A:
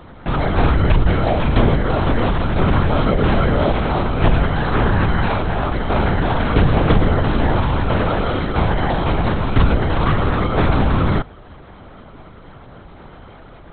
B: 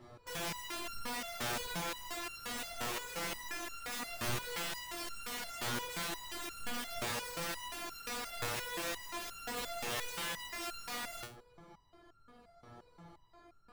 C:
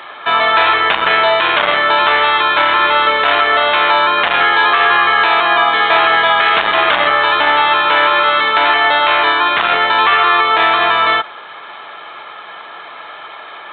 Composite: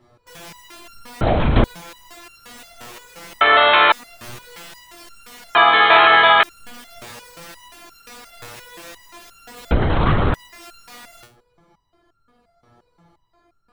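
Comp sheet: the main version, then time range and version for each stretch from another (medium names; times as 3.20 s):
B
1.21–1.64 s: from A
3.41–3.92 s: from C
5.55–6.43 s: from C
9.71–10.34 s: from A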